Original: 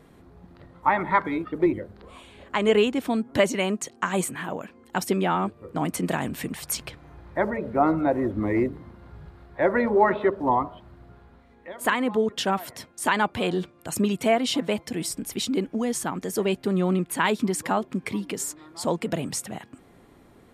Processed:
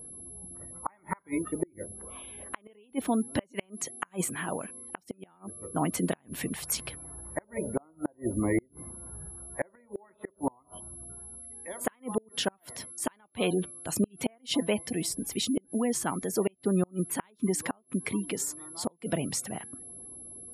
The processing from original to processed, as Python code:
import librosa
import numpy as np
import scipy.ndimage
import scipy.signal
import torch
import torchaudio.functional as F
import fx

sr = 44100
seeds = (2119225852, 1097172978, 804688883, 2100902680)

y = x + 10.0 ** (-41.0 / 20.0) * np.sin(2.0 * np.pi * 11000.0 * np.arange(len(x)) / sr)
y = fx.spec_gate(y, sr, threshold_db=-30, keep='strong')
y = fx.gate_flip(y, sr, shuts_db=-14.0, range_db=-36)
y = y * 10.0 ** (-2.0 / 20.0)